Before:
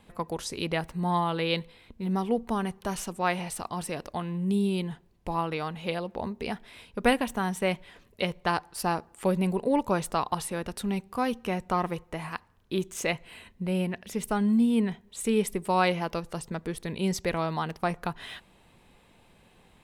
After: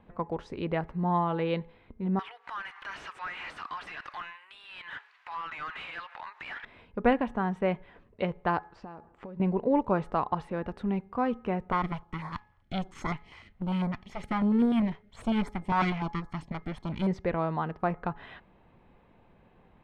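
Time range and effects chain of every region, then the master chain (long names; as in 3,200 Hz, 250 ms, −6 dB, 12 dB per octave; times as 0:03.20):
0:02.19–0:06.65: downward compressor 10 to 1, threshold −40 dBFS + high-pass filter 1,400 Hz 24 dB per octave + mid-hump overdrive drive 36 dB, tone 7,900 Hz, clips at −24.5 dBFS
0:08.68–0:09.40: Butterworth low-pass 7,400 Hz + downward compressor 20 to 1, threshold −38 dBFS
0:11.72–0:17.07: lower of the sound and its delayed copy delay 0.93 ms + high-shelf EQ 2,200 Hz +11.5 dB + notch on a step sequencer 10 Hz 230–2,800 Hz
whole clip: low-pass filter 1,600 Hz 12 dB per octave; hum removal 422.6 Hz, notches 5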